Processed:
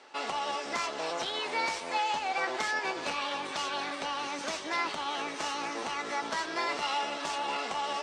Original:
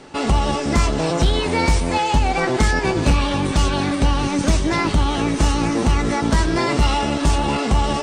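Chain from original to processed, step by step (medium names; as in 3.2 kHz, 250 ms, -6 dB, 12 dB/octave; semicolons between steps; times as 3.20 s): tracing distortion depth 0.024 ms; band-pass 660–6200 Hz; trim -8 dB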